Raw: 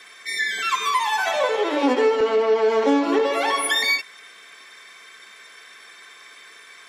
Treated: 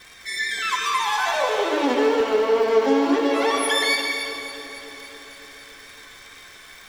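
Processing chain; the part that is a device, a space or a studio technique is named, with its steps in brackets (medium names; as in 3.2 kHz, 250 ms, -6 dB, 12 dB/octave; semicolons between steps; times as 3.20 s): vinyl LP (wow and flutter; crackle 150 per s -33 dBFS; pink noise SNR 34 dB); peaking EQ 5.1 kHz +2.5 dB; echo whose repeats swap between lows and highs 140 ms, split 800 Hz, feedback 83%, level -12.5 dB; plate-style reverb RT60 2 s, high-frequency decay 0.85×, pre-delay 95 ms, DRR 3 dB; trim -2.5 dB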